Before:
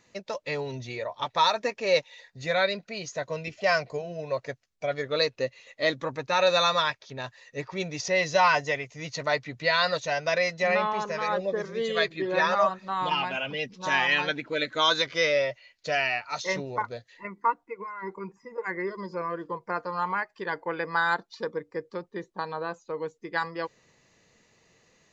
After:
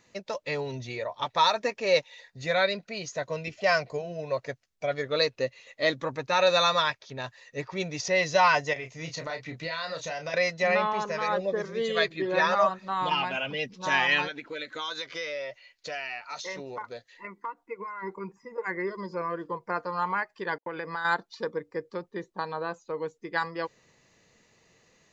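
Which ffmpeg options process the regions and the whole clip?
ffmpeg -i in.wav -filter_complex "[0:a]asettb=1/sr,asplit=3[link_01][link_02][link_03];[link_01]atrim=end=8.734[link_04];[link_02]atrim=start=8.73:end=10.34,asetpts=PTS-STARTPTS,afade=type=in:duration=0.004:curve=qsin,afade=type=out:start_time=1.606:duration=0.004:curve=qsin,acompressor=threshold=-32dB:ratio=4:attack=3.2:release=140:knee=1:detection=peak,asplit=2[link_05][link_06];[link_06]adelay=31,volume=-7dB[link_07];[link_05][link_07]amix=inputs=2:normalize=0,atrim=end_sample=71001[link_08];[link_03]atrim=start=10.336[link_09];[link_04][link_08]acrossfade=duration=0.004:curve1=hsin:curve2=qsin[link_10];[link_10][link_09]acrossfade=duration=0.004:curve1=qsin:curve2=hsin,asettb=1/sr,asplit=3[link_11][link_12][link_13];[link_11]atrim=end=14.274[link_14];[link_12]atrim=start=14.27:end=17.66,asetpts=PTS-STARTPTS,afade=type=in:duration=0.004:curve=qsin,afade=type=out:start_time=3.386:duration=0.004:curve=qsin,equalizer=frequency=110:width=0.7:gain=-10,bandreject=frequency=630:width=15,acompressor=threshold=-34dB:ratio=3:attack=3.2:release=140:knee=1:detection=peak[link_15];[link_13]atrim=start=17.656[link_16];[link_14][link_15]acrossfade=duration=0.004:curve1=hsin:curve2=qsin[link_17];[link_17][link_16]acrossfade=duration=0.004:curve1=qsin:curve2=hsin,asettb=1/sr,asplit=3[link_18][link_19][link_20];[link_18]atrim=end=20.584[link_21];[link_19]atrim=start=20.58:end=21.05,asetpts=PTS-STARTPTS,afade=type=in:duration=0.004:curve=qsin,afade=type=out:start_time=0.466:duration=0.004:curve=qsin,agate=range=-44dB:threshold=-43dB:ratio=16:release=100:detection=peak,acompressor=threshold=-30dB:ratio=4:attack=3.2:release=140:knee=1:detection=peak[link_22];[link_20]atrim=start=21.046[link_23];[link_21][link_22]acrossfade=duration=0.004:curve1=hsin:curve2=qsin[link_24];[link_24][link_23]acrossfade=duration=0.004:curve1=qsin:curve2=hsin" out.wav

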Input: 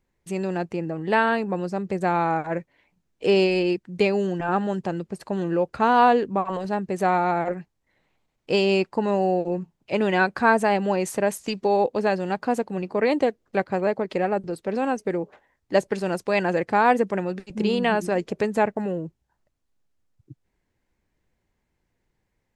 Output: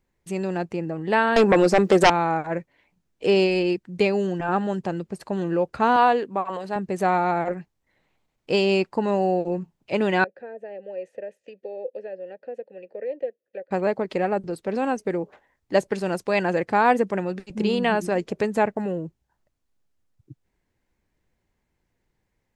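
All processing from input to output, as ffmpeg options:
ffmpeg -i in.wav -filter_complex "[0:a]asettb=1/sr,asplit=3[link_01][link_02][link_03];[link_01]atrim=end=1.364[link_04];[link_02]atrim=start=1.36:end=2.1,asetpts=PTS-STARTPTS,afade=type=in:duration=0.004:curve=qsin,afade=type=out:start_time=0.736:duration=0.004:curve=qsin,highpass=290,aeval=exprs='0.335*sin(PI/2*3.98*val(0)/0.335)':channel_layout=same[link_05];[link_03]atrim=start=2.096[link_06];[link_04][link_05]acrossfade=duration=0.004:curve1=hsin:curve2=qsin[link_07];[link_07][link_06]acrossfade=duration=0.004:curve1=qsin:curve2=hsin,asettb=1/sr,asplit=3[link_08][link_09][link_10];[link_08]atrim=end=5.964[link_11];[link_09]atrim=start=5.96:end=6.76,asetpts=PTS-STARTPTS,afade=type=in:duration=0.004:curve=qsin,afade=type=out:start_time=0.796:duration=0.004:curve=qsin,highpass=frequency=390:poles=1,equalizer=frequency=5800:width_type=o:width=0.37:gain=-5[link_12];[link_10]atrim=start=6.756[link_13];[link_11][link_12]acrossfade=duration=0.004:curve1=hsin:curve2=qsin[link_14];[link_14][link_13]acrossfade=duration=0.004:curve1=qsin:curve2=hsin,asettb=1/sr,asplit=3[link_15][link_16][link_17];[link_15]atrim=end=10.244[link_18];[link_16]atrim=start=10.24:end=13.71,asetpts=PTS-STARTPTS,afade=type=in:duration=0.004:curve=qsin,afade=type=out:start_time=3.466:duration=0.004:curve=qsin,acrossover=split=370|990[link_19][link_20][link_21];[link_19]acompressor=threshold=-27dB:ratio=4[link_22];[link_20]acompressor=threshold=-24dB:ratio=4[link_23];[link_21]acompressor=threshold=-41dB:ratio=4[link_24];[link_22][link_23][link_24]amix=inputs=3:normalize=0,asplit=3[link_25][link_26][link_27];[link_25]bandpass=frequency=530:width_type=q:width=8,volume=0dB[link_28];[link_26]bandpass=frequency=1840:width_type=q:width=8,volume=-6dB[link_29];[link_27]bandpass=frequency=2480:width_type=q:width=8,volume=-9dB[link_30];[link_28][link_29][link_30]amix=inputs=3:normalize=0[link_31];[link_17]atrim=start=13.706[link_32];[link_18][link_31]acrossfade=duration=0.004:curve1=hsin:curve2=qsin[link_33];[link_33][link_32]acrossfade=duration=0.004:curve1=qsin:curve2=hsin" out.wav

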